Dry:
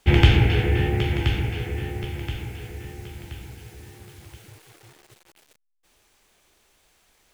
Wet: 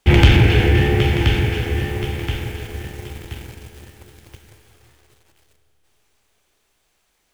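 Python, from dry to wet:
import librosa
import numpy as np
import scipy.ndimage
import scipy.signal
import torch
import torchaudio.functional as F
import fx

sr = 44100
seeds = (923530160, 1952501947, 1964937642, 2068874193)

y = fx.leveller(x, sr, passes=2)
y = fx.rev_schroeder(y, sr, rt60_s=3.8, comb_ms=27, drr_db=8.5)
y = F.gain(torch.from_numpy(y), -1.0).numpy()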